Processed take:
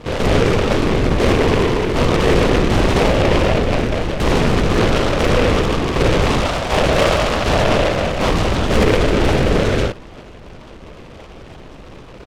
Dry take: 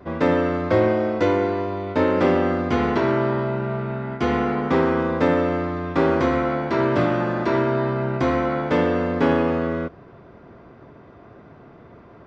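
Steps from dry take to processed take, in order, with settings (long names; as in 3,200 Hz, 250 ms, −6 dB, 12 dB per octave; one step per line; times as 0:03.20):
0:06.41–0:08.29: high-pass filter 430 Hz
brickwall limiter −15 dBFS, peak gain reduction 9 dB
double-tracking delay 41 ms −3 dB
linear-prediction vocoder at 8 kHz whisper
short delay modulated by noise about 1,700 Hz, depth 0.11 ms
level +7 dB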